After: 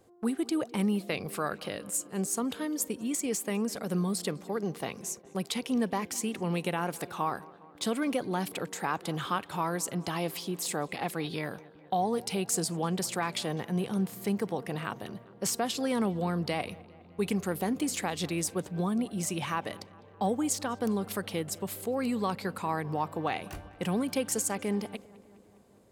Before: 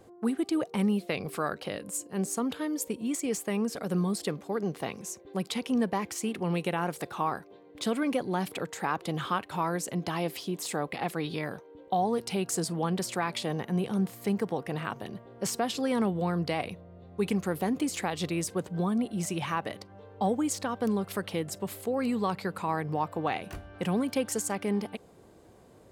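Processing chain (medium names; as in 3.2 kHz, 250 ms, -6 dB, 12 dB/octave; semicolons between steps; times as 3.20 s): gate -46 dBFS, range -6 dB; treble shelf 4.4 kHz +5.5 dB; on a send: filtered feedback delay 204 ms, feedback 67%, low-pass 3.5 kHz, level -21.5 dB; on the sum: trim -1.5 dB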